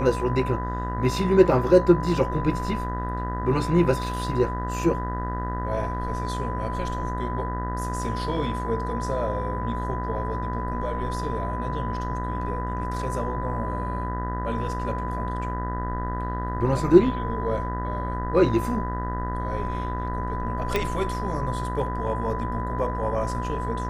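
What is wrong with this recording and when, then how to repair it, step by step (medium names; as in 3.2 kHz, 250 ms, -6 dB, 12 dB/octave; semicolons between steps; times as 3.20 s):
buzz 60 Hz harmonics 33 -30 dBFS
whine 1 kHz -31 dBFS
20.76 s: pop -10 dBFS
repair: de-click; band-stop 1 kHz, Q 30; de-hum 60 Hz, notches 33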